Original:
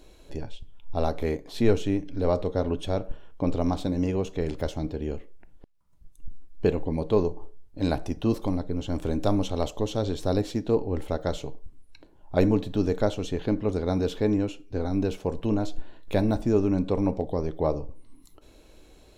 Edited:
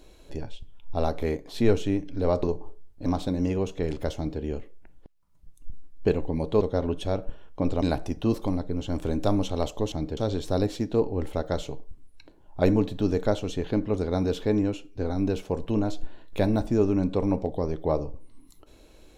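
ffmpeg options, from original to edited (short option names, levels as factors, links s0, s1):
-filter_complex "[0:a]asplit=7[s0][s1][s2][s3][s4][s5][s6];[s0]atrim=end=2.432[s7];[s1]atrim=start=7.188:end=7.822[s8];[s2]atrim=start=3.638:end=7.192[s9];[s3]atrim=start=2.428:end=3.642[s10];[s4]atrim=start=7.818:end=9.922[s11];[s5]atrim=start=4.738:end=4.992[s12];[s6]atrim=start=9.918[s13];[s7][s8]acrossfade=d=0.004:c1=hsin:c2=hsin[s14];[s14][s9]acrossfade=d=0.004:c1=hsin:c2=hsin[s15];[s15][s10]acrossfade=d=0.004:c1=hsin:c2=hsin[s16];[s16][s11]acrossfade=d=0.004:c1=hsin:c2=hsin[s17];[s17][s12]acrossfade=d=0.004:c1=hsin:c2=hsin[s18];[s18][s13]acrossfade=d=0.004:c1=hsin:c2=hsin"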